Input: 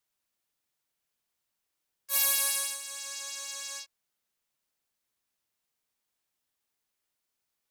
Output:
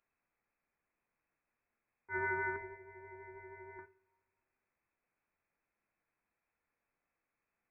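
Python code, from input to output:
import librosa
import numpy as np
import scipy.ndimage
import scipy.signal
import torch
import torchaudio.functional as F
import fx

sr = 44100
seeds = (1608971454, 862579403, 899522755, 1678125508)

y = fx.freq_invert(x, sr, carrier_hz=2600)
y = fx.fixed_phaser(y, sr, hz=540.0, stages=4, at=(2.56, 3.79))
y = fx.rev_double_slope(y, sr, seeds[0], early_s=0.3, late_s=2.3, knee_db=-27, drr_db=8.5)
y = y * 10.0 ** (3.0 / 20.0)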